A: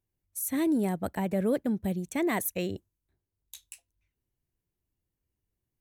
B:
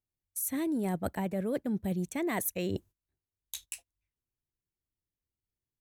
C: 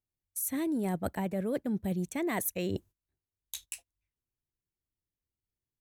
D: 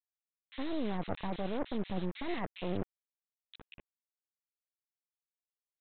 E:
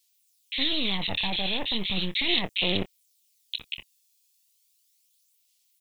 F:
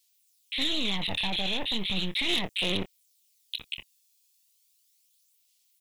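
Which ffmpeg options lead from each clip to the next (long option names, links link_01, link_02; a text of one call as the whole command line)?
ffmpeg -i in.wav -af "agate=range=-17dB:threshold=-54dB:ratio=16:detection=peak,areverse,acompressor=threshold=-36dB:ratio=10,areverse,volume=7dB" out.wav
ffmpeg -i in.wav -af anull out.wav
ffmpeg -i in.wav -filter_complex "[0:a]aresample=8000,acrusher=bits=4:dc=4:mix=0:aa=0.000001,aresample=44100,acrossover=split=2000[link_01][link_02];[link_01]adelay=60[link_03];[link_03][link_02]amix=inputs=2:normalize=0" out.wav
ffmpeg -i in.wav -filter_complex "[0:a]aexciter=amount=15.8:drive=3.2:freq=2300,aphaser=in_gain=1:out_gain=1:delay=1.2:decay=0.37:speed=0.36:type=sinusoidal,asplit=2[link_01][link_02];[link_02]adelay=26,volume=-13.5dB[link_03];[link_01][link_03]amix=inputs=2:normalize=0,volume=2dB" out.wav
ffmpeg -i in.wav -af "asoftclip=type=tanh:threshold=-19.5dB" out.wav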